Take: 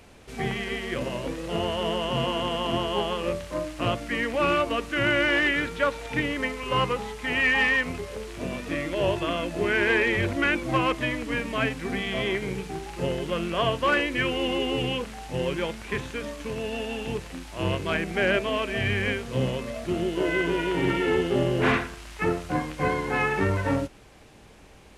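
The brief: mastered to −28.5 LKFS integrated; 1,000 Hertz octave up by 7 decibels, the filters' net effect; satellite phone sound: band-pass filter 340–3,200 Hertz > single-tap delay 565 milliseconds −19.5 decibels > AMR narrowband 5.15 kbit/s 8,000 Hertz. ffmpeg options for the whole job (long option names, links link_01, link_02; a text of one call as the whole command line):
ffmpeg -i in.wav -af "highpass=340,lowpass=3200,equalizer=frequency=1000:width_type=o:gain=8.5,aecho=1:1:565:0.106,volume=-2dB" -ar 8000 -c:a libopencore_amrnb -b:a 5150 out.amr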